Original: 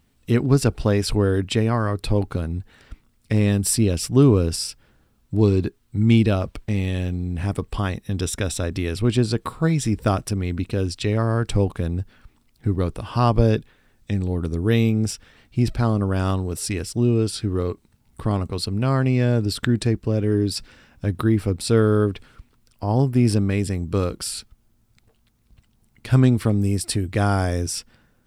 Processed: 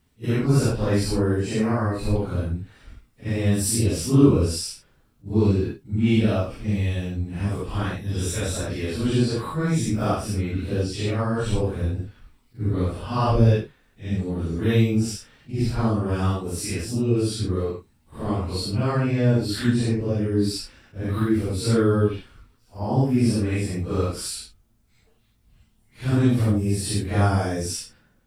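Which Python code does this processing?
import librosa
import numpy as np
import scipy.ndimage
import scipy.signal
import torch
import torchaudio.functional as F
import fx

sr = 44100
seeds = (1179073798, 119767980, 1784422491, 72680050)

y = fx.phase_scramble(x, sr, seeds[0], window_ms=200)
y = fx.peak_eq(y, sr, hz=3400.0, db=-13.5, octaves=0.36, at=(1.03, 2.16))
y = fx.attack_slew(y, sr, db_per_s=390.0)
y = y * 10.0 ** (-1.5 / 20.0)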